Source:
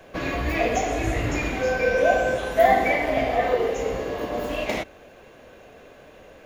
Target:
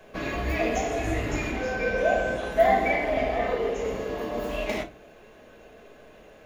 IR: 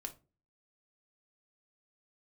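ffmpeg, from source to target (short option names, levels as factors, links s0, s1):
-filter_complex "[0:a]asettb=1/sr,asplit=3[s0][s1][s2];[s0]atrim=end=1.514[s3];[s1]atrim=start=1.51:end=3.85,asetpts=PTS-STARTPTS,afade=t=in:d=0.004:c=qsin,afade=t=out:st=2.336:d=0.004:c=qsin,highshelf=f=8700:g=-7.5[s4];[s2]atrim=start=3.846[s5];[s3][s4]acrossfade=d=0.004:c1=hsin:c2=qsin[s6];[s6][s5]acrossfade=d=0.004:c1=qsin:c2=hsin[s7];[1:a]atrim=start_sample=2205[s8];[s7][s8]afir=irnorm=-1:irlink=0"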